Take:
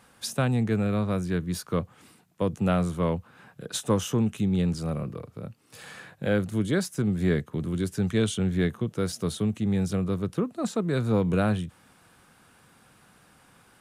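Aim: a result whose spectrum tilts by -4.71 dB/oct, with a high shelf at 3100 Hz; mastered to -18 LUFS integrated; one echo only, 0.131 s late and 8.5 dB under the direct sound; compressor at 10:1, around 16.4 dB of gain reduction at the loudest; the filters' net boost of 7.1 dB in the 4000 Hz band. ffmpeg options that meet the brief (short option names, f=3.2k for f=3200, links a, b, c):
-af "highshelf=f=3.1k:g=7,equalizer=f=4k:t=o:g=3.5,acompressor=threshold=-36dB:ratio=10,aecho=1:1:131:0.376,volume=21.5dB"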